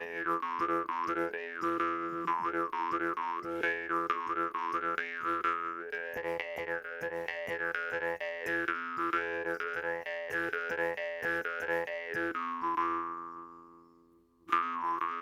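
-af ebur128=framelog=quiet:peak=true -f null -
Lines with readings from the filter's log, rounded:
Integrated loudness:
  I:         -33.8 LUFS
  Threshold: -44.1 LUFS
Loudness range:
  LRA:         2.2 LU
  Threshold: -54.1 LUFS
  LRA low:   -35.4 LUFS
  LRA high:  -33.1 LUFS
True peak:
  Peak:      -13.0 dBFS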